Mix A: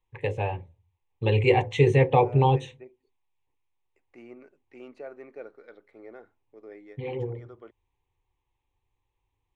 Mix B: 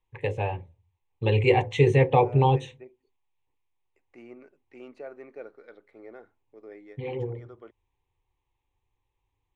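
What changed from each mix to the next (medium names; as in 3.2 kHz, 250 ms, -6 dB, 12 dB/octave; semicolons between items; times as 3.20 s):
no change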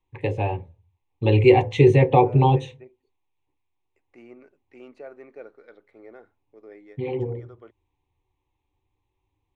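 first voice: send +6.0 dB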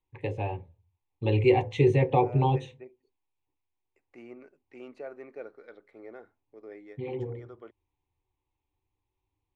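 first voice -7.0 dB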